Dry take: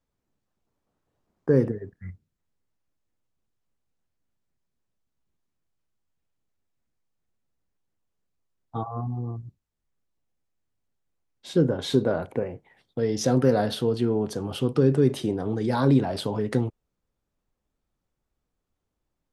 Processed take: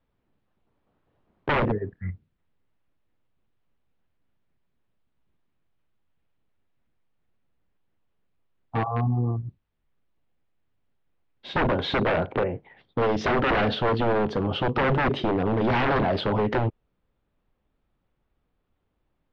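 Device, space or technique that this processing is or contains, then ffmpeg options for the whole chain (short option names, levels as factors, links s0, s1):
synthesiser wavefolder: -af "aeval=exprs='0.0668*(abs(mod(val(0)/0.0668+3,4)-2)-1)':c=same,lowpass=f=3500:w=0.5412,lowpass=f=3500:w=1.3066,volume=2.11"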